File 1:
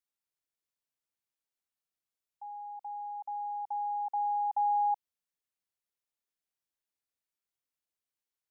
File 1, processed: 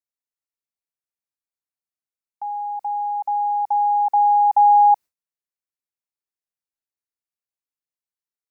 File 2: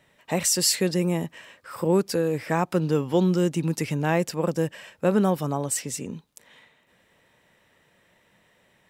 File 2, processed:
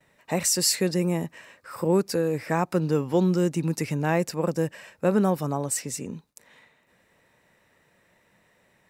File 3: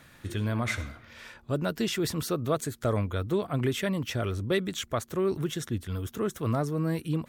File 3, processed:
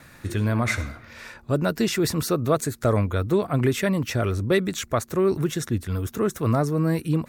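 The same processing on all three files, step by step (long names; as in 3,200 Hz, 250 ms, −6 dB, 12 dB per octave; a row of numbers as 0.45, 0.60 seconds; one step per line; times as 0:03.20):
noise gate with hold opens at −54 dBFS
parametric band 3,200 Hz −8 dB 0.28 octaves
normalise the peak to −9 dBFS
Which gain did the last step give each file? +15.5, −0.5, +6.5 decibels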